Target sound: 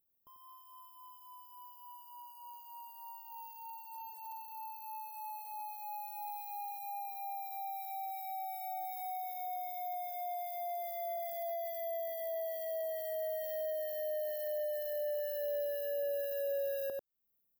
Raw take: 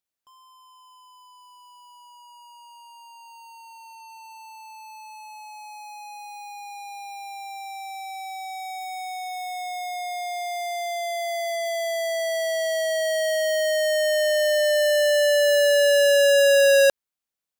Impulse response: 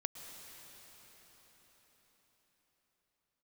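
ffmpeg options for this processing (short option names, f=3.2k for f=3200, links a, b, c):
-filter_complex "[0:a]firequalizer=gain_entry='entry(380,0);entry(1700,-13);entry(8000,-20);entry(14000,13)':delay=0.05:min_phase=1,asplit=2[a][b];[b]aecho=0:1:93:0.447[c];[a][c]amix=inputs=2:normalize=0,acompressor=threshold=-40dB:ratio=5,lowshelf=f=360:g=9"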